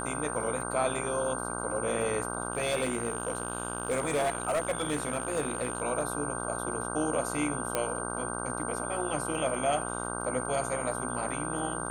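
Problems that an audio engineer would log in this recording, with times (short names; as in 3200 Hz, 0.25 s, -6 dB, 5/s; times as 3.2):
buzz 60 Hz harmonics 26 -36 dBFS
crackle 48/s -41 dBFS
tone 8800 Hz -38 dBFS
2.52–5.83 clipped -24 dBFS
7.75 pop -12 dBFS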